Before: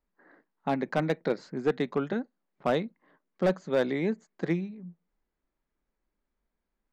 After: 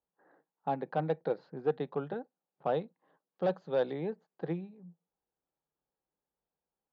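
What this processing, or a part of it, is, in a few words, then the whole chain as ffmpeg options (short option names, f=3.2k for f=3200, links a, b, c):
guitar cabinet: -filter_complex "[0:a]asettb=1/sr,asplit=3[a][b][c];[a]atrim=end=2.814[d];[b]atrim=start=2.81:end=3.94,asetpts=PTS-STARTPTS,afade=t=in:d=0.004:c=qsin,afade=t=out:st=1.126:d=0.004:c=qsin,highshelf=f=4.3k:g=11[e];[c]atrim=start=3.936[f];[d][e]acrossfade=d=0.004:c1=hsin:c2=qsin[g];[g][f]acrossfade=d=0.004:c1=qsin:c2=hsin,highpass=82,equalizer=f=150:t=q:w=4:g=6,equalizer=f=230:t=q:w=4:g=-6,equalizer=f=490:t=q:w=4:g=7,equalizer=f=800:t=q:w=4:g=9,equalizer=f=2.1k:t=q:w=4:g=-10,lowpass=f=3.8k:w=0.5412,lowpass=f=3.8k:w=1.3066,volume=-8.5dB"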